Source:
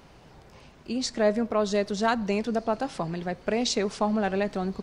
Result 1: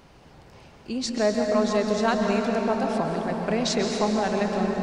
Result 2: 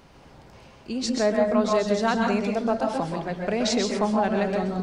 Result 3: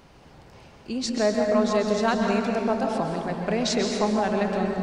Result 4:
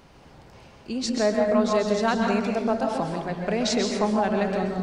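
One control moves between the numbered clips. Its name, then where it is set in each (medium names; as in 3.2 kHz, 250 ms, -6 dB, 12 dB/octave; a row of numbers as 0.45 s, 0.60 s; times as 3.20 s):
plate-style reverb, RT60: 5 s, 0.5 s, 2.4 s, 1.1 s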